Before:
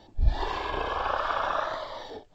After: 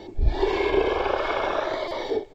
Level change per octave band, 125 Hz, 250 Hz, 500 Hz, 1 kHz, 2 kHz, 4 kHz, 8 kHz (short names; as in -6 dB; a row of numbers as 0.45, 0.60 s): +2.0 dB, +13.5 dB, +10.5 dB, +1.0 dB, +3.5 dB, +4.0 dB, n/a